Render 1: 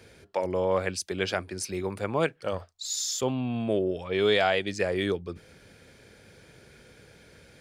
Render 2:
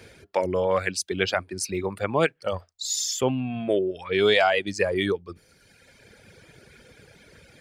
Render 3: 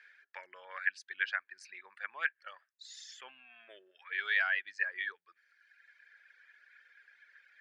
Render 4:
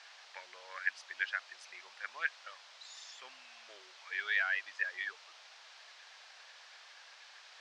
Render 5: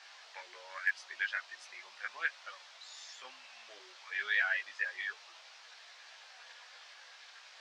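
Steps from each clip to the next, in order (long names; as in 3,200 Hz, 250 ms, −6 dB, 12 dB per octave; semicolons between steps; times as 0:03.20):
reverb reduction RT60 1.5 s; parametric band 2,200 Hz +2 dB; level +4.5 dB
four-pole ladder band-pass 1,800 Hz, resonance 75%; level −1 dB
noise in a band 600–5,300 Hz −55 dBFS; level −2 dB
multi-voice chorus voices 6, 0.32 Hz, delay 17 ms, depth 3 ms; hard clipping −24 dBFS, distortion −43 dB; level +4 dB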